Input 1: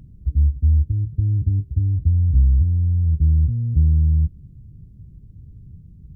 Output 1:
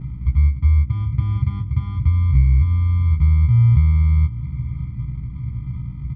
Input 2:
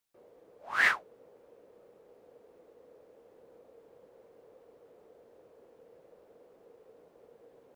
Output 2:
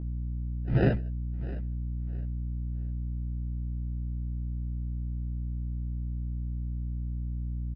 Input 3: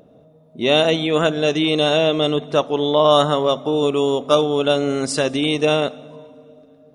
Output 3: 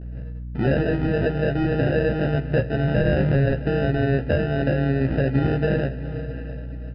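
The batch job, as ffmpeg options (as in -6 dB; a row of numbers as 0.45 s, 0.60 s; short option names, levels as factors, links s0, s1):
-filter_complex "[0:a]acompressor=threshold=0.0251:ratio=2,agate=range=0.00708:threshold=0.00355:ratio=16:detection=peak,acrusher=samples=40:mix=1:aa=0.000001,equalizer=f=125:t=o:w=1:g=12,equalizer=f=1000:t=o:w=1:g=-9,equalizer=f=2000:t=o:w=1:g=4,equalizer=f=4000:t=o:w=1:g=-10,asplit=2[s0][s1];[s1]aecho=0:1:661|1322|1983:0.133|0.04|0.012[s2];[s0][s2]amix=inputs=2:normalize=0,aeval=exprs='val(0)+0.0126*(sin(2*PI*60*n/s)+sin(2*PI*2*60*n/s)/2+sin(2*PI*3*60*n/s)/3+sin(2*PI*4*60*n/s)/4+sin(2*PI*5*60*n/s)/5)':c=same,aemphasis=mode=reproduction:type=75kf,bandreject=f=50:t=h:w=6,bandreject=f=100:t=h:w=6,asplit=2[s3][s4];[s4]adelay=15,volume=0.562[s5];[s3][s5]amix=inputs=2:normalize=0,aresample=11025,aresample=44100,volume=1.68"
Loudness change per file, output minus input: +0.5 LU, -6.0 LU, -4.5 LU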